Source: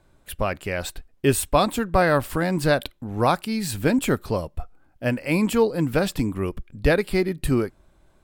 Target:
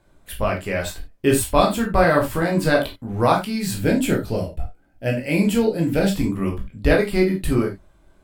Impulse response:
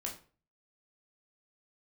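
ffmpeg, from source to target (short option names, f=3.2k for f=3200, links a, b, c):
-filter_complex "[0:a]asettb=1/sr,asplit=3[a][b][c];[a]atrim=end=3.784[d];[b]atrim=start=3.78:end=6.1,asetpts=PTS-STARTPTS,afade=t=in:d=0.004:c=qsin,afade=t=out:st=2.316:d=0.004:c=qsin,equalizer=f=1.1k:w=3.7:g=-14.5[e];[c]atrim=start=6.096[f];[d][e]acrossfade=d=0.004:c1=hsin:c2=qsin[g];[g][f]acrossfade=d=0.004:c1=qsin:c2=hsin[h];[1:a]atrim=start_sample=2205,atrim=end_sample=4410[i];[h][i]afir=irnorm=-1:irlink=0,volume=2.5dB"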